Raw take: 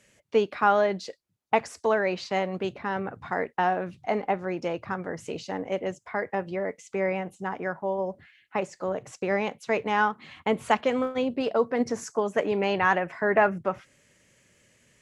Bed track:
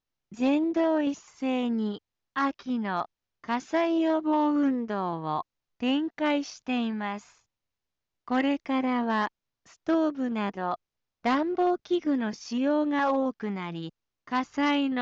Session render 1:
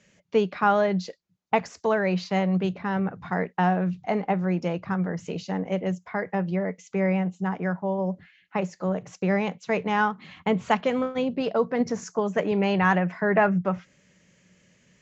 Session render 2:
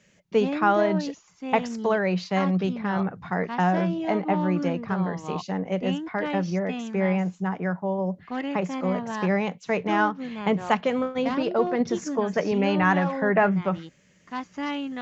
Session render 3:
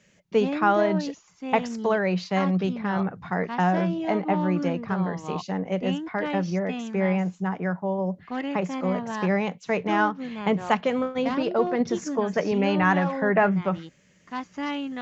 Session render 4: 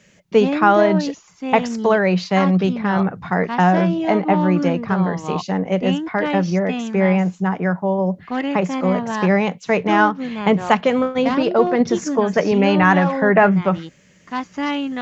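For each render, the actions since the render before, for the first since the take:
steep low-pass 7.3 kHz 96 dB/octave; peaking EQ 180 Hz +14 dB 0.3 oct
add bed track -5 dB
no audible change
trim +7.5 dB; peak limiter -2 dBFS, peak gain reduction 1 dB

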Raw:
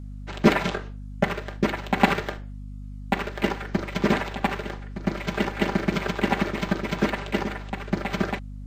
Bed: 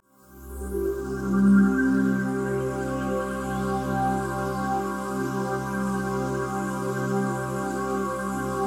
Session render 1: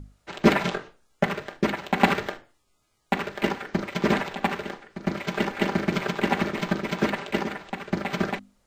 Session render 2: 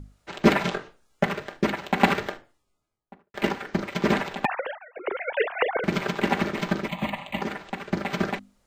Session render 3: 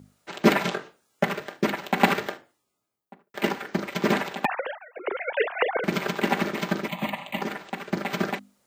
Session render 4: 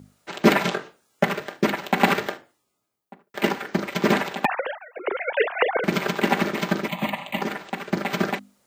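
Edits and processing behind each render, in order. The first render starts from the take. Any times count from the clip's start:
hum notches 50/100/150/200/250/300 Hz
2.21–3.34 s: studio fade out; 4.45–5.84 s: formants replaced by sine waves; 6.88–7.42 s: static phaser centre 1.5 kHz, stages 6
high-pass 150 Hz 12 dB/octave; treble shelf 11 kHz +11.5 dB
trim +3 dB; peak limiter -3 dBFS, peak gain reduction 2.5 dB

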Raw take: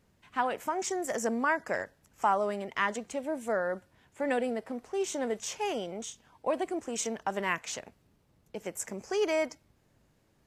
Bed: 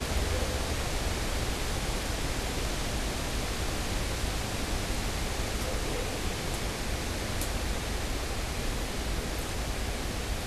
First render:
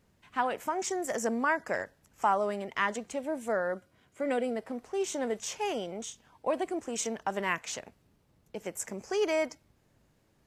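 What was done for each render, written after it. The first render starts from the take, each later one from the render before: 3.74–4.56 s: comb of notches 890 Hz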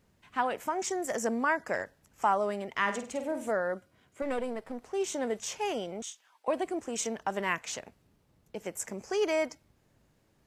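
2.81–3.51 s: flutter echo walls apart 8.5 m, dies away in 0.37 s; 4.22–4.82 s: partial rectifier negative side -7 dB; 6.02–6.48 s: high-pass 1.1 kHz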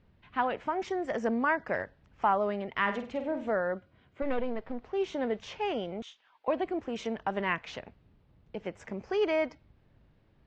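low-pass 3.9 kHz 24 dB/octave; bass shelf 120 Hz +10 dB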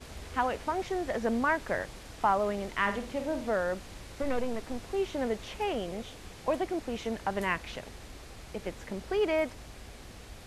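add bed -14.5 dB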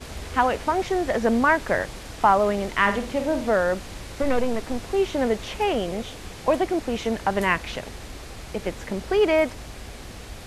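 trim +8.5 dB

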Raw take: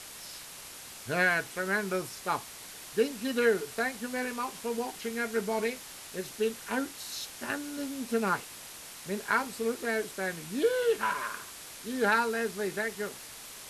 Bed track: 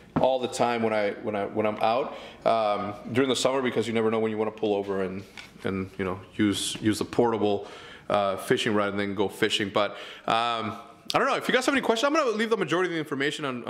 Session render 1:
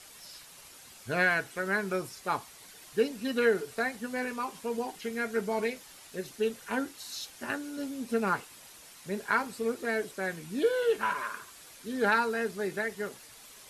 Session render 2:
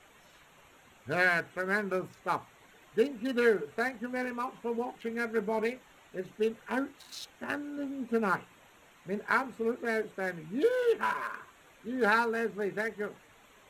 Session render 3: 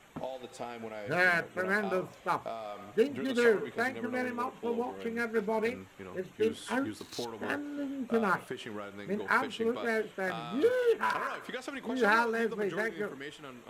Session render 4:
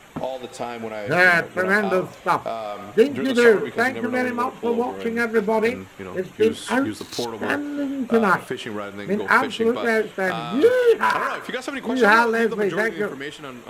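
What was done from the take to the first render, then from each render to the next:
noise reduction 8 dB, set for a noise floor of -46 dBFS
local Wiener filter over 9 samples; hum notches 60/120/180 Hz
add bed track -16.5 dB
trim +11 dB

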